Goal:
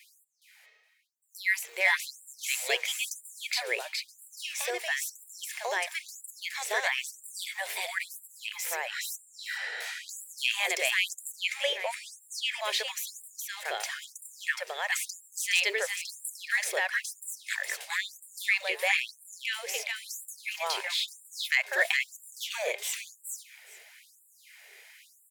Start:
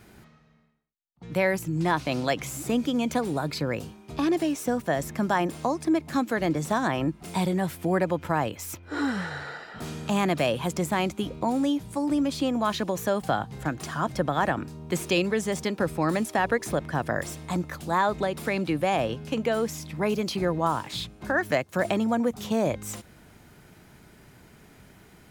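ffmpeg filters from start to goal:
-filter_complex "[0:a]highshelf=f=1.6k:t=q:w=3:g=7.5,aecho=1:1:417|834|1251:0.708|0.106|0.0159,acrossover=split=250|1900[a][b][c];[a]acrusher=bits=5:mode=log:mix=0:aa=0.000001[d];[d][b][c]amix=inputs=3:normalize=0,asettb=1/sr,asplit=3[e][f][g];[e]atrim=end=11.394[h];[f]atrim=start=11.39:end=12.61,asetpts=PTS-STARTPTS,afade=t=in:d=0.004:c=qsin,afade=t=out:st=1.216:d=0.004:c=qsin,equalizer=f=500:t=o:w=1:g=9,equalizer=f=2k:t=o:w=1:g=9,equalizer=f=16k:t=o:w=1:g=-5[i];[g]atrim=start=12.606[j];[h][i]acrossfade=d=0.004:c1=hsin:c2=qsin[k];[k][j]acrossfade=d=0.004:c1=qsin:c2=hsin,afftfilt=real='re*gte(b*sr/1024,350*pow(7300/350,0.5+0.5*sin(2*PI*1*pts/sr)))':imag='im*gte(b*sr/1024,350*pow(7300/350,0.5+0.5*sin(2*PI*1*pts/sr)))':win_size=1024:overlap=0.75,volume=-5dB"

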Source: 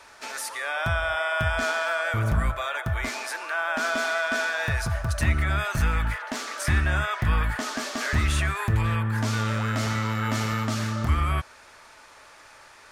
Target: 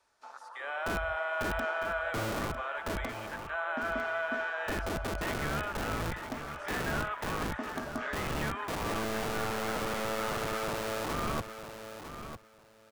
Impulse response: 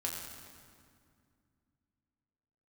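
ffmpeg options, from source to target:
-filter_complex "[0:a]acrossover=split=6300[a][b];[b]acompressor=threshold=-53dB:ratio=4:attack=1:release=60[c];[a][c]amix=inputs=2:normalize=0,afwtdn=0.0251,equalizer=f=2.2k:t=o:w=1.2:g=-5.5,acrossover=split=430[d][e];[d]aeval=exprs='(mod(18.8*val(0)+1,2)-1)/18.8':c=same[f];[f][e]amix=inputs=2:normalize=0,aecho=1:1:952|1904:0.316|0.0538,volume=-5dB"

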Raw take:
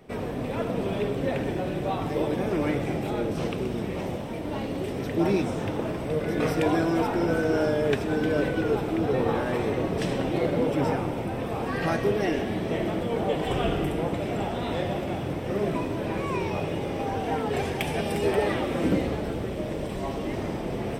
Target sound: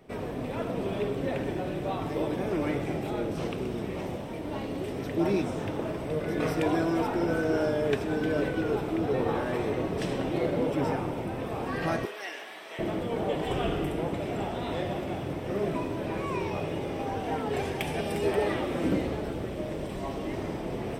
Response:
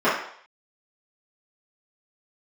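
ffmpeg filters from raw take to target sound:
-filter_complex "[0:a]asettb=1/sr,asplit=3[a][b][c];[a]atrim=end=12.054[d];[b]atrim=start=12.05:end=12.79,asetpts=PTS-STARTPTS,afade=t=in:d=0.004:c=qsin,afade=t=out:st=0.736:d=0.004:c=qsin,highpass=1.1k[e];[c]atrim=start=12.786[f];[d][e]acrossfade=d=0.004:c1=hsin:c2=qsin[g];[g][f]acrossfade=d=0.004:c1=qsin:c2=hsin,asplit=2[h][i];[1:a]atrim=start_sample=2205[j];[i][j]afir=irnorm=-1:irlink=0,volume=-33.5dB[k];[h][k]amix=inputs=2:normalize=0,volume=-3.5dB"

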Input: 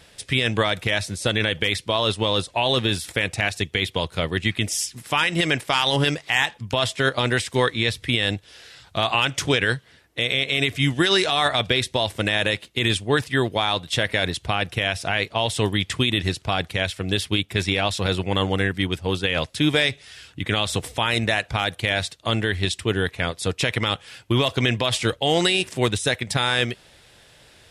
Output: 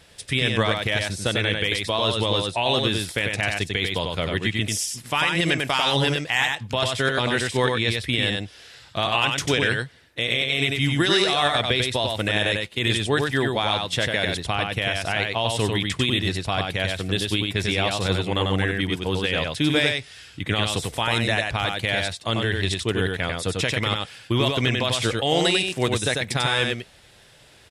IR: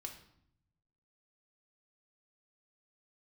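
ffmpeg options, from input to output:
-af "aecho=1:1:95:0.668,volume=-2dB"

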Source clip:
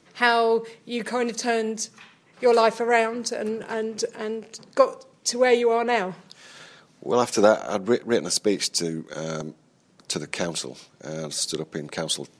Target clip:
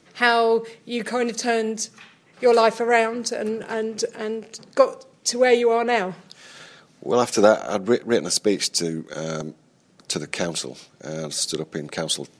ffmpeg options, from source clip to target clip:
-af "bandreject=f=1k:w=11,volume=2dB"

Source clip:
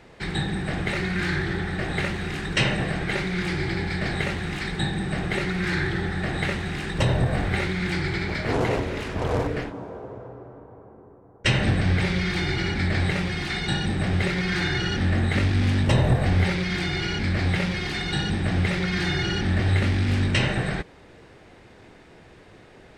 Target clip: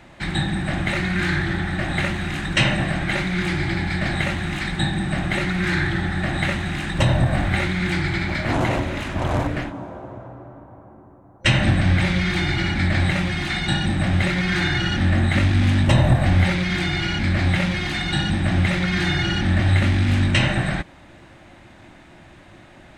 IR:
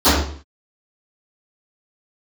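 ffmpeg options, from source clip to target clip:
-af "superequalizer=7b=0.251:14b=0.631,volume=4dB"

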